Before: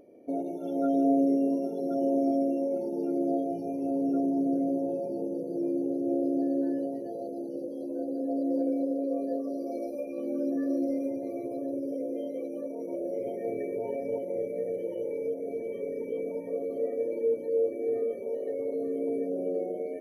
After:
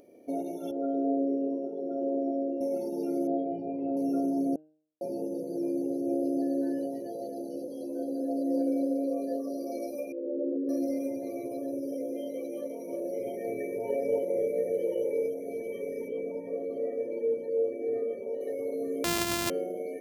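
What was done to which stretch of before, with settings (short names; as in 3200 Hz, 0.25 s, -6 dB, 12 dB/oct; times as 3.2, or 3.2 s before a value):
0.71–2.61 band-pass 420 Hz, Q 1.3
3.27–3.97 Bessel low-pass 2100 Hz, order 6
4.56–5.01 mute
6.98–9.1 echo 0.251 s -11 dB
10.12–10.69 formant sharpening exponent 2
12.11–12.68 echo throw 0.36 s, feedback 10%, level -9.5 dB
13.89–15.26 dynamic EQ 460 Hz, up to +6 dB, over -44 dBFS, Q 1.5
16.08–18.41 LPF 2000 Hz 6 dB/oct
19.04–19.5 sample sorter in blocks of 128 samples
whole clip: high shelf 2100 Hz +11.5 dB; de-hum 154.5 Hz, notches 20; gain -1.5 dB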